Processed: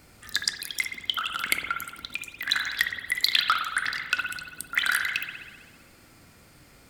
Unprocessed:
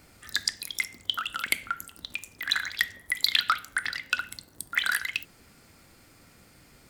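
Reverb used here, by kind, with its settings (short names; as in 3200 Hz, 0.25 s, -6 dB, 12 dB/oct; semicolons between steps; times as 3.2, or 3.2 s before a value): spring tank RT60 1.3 s, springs 54 ms, chirp 40 ms, DRR 4 dB; gain +1 dB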